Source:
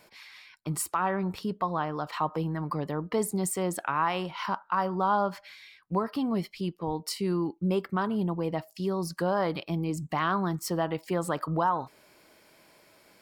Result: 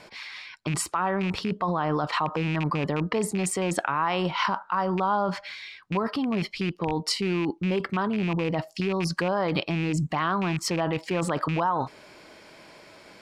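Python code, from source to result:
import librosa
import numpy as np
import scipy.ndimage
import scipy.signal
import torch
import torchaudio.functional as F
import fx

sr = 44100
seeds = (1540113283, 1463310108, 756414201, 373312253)

p1 = fx.rattle_buzz(x, sr, strikes_db=-30.0, level_db=-26.0)
p2 = scipy.signal.sosfilt(scipy.signal.butter(2, 6200.0, 'lowpass', fs=sr, output='sos'), p1)
p3 = fx.over_compress(p2, sr, threshold_db=-34.0, ratio=-0.5)
y = p2 + (p3 * 10.0 ** (0.5 / 20.0))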